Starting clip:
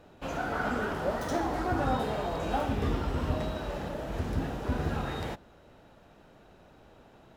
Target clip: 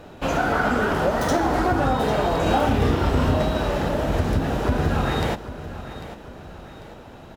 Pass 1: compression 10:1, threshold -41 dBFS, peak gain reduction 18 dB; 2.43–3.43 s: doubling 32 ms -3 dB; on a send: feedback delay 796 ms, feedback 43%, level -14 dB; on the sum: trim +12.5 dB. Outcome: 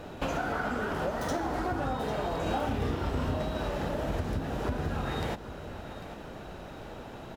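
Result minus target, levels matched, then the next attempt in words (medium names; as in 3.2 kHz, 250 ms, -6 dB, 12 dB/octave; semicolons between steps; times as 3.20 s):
compression: peak gain reduction +11 dB
compression 10:1, threshold -29 dBFS, peak gain reduction 7 dB; 2.43–3.43 s: doubling 32 ms -3 dB; on a send: feedback delay 796 ms, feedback 43%, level -14 dB; on the sum: trim +12.5 dB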